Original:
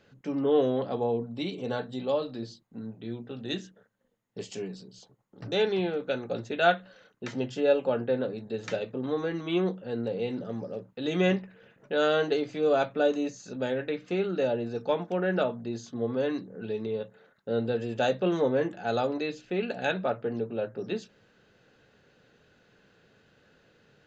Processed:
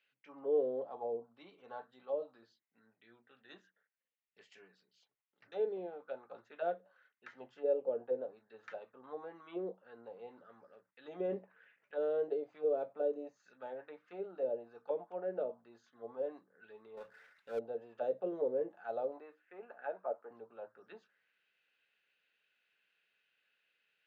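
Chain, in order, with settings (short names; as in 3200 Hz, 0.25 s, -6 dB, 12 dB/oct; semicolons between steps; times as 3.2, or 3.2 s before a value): 19.2–20.31 three-band isolator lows -24 dB, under 210 Hz, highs -22 dB, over 2300 Hz; auto-wah 480–2600 Hz, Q 3.1, down, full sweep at -22.5 dBFS; 11.25–11.93 transient shaper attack -12 dB, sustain +5 dB; 16.97–17.59 power-law curve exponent 0.7; gain -6 dB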